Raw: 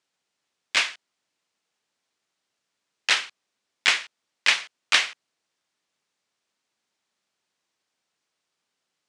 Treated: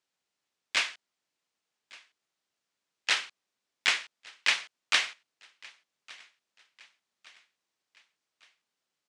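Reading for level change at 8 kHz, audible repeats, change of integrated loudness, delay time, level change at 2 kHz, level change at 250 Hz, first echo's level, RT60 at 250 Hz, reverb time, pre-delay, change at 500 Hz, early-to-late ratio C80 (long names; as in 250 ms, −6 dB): −5.5 dB, 2, −5.5 dB, 1,162 ms, −5.5 dB, −5.5 dB, −23.5 dB, no reverb audible, no reverb audible, no reverb audible, −5.5 dB, no reverb audible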